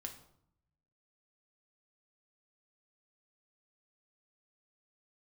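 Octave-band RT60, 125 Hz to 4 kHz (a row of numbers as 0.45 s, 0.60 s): 1.3 s, 0.90 s, 0.70 s, 0.70 s, 0.50 s, 0.50 s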